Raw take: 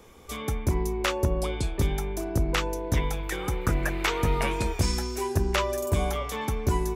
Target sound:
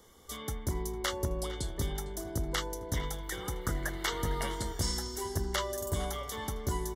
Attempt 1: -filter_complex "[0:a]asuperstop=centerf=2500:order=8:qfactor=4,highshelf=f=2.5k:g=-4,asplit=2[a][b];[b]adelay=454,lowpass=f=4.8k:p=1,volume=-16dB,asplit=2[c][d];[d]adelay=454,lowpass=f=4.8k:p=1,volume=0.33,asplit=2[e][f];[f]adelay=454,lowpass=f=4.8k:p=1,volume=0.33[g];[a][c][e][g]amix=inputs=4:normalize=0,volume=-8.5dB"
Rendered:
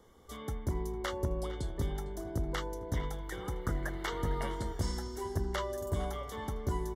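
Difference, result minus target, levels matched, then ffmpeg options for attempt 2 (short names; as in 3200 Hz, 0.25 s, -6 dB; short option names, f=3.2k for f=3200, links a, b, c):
4000 Hz band -6.0 dB
-filter_complex "[0:a]asuperstop=centerf=2500:order=8:qfactor=4,highshelf=f=2.5k:g=7.5,asplit=2[a][b];[b]adelay=454,lowpass=f=4.8k:p=1,volume=-16dB,asplit=2[c][d];[d]adelay=454,lowpass=f=4.8k:p=1,volume=0.33,asplit=2[e][f];[f]adelay=454,lowpass=f=4.8k:p=1,volume=0.33[g];[a][c][e][g]amix=inputs=4:normalize=0,volume=-8.5dB"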